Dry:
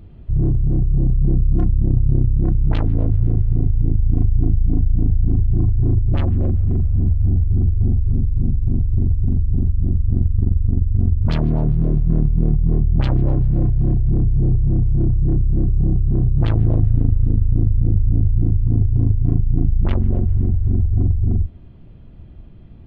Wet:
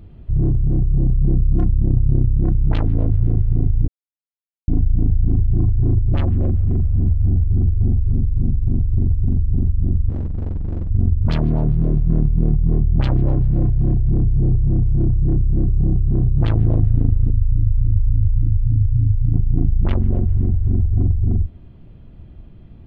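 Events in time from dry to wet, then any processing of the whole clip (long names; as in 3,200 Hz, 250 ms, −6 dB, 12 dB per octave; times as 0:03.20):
0:03.88–0:04.68: silence
0:10.09–0:10.91: gain into a clipping stage and back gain 20 dB
0:17.30–0:19.34: expanding power law on the bin magnitudes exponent 2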